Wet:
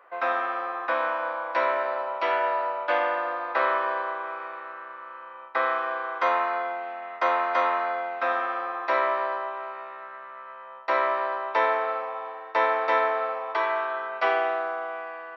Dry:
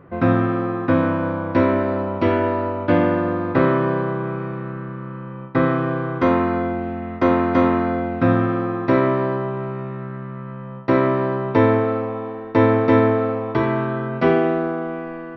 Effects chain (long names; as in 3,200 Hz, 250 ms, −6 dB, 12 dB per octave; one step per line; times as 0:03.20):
high-pass filter 660 Hz 24 dB per octave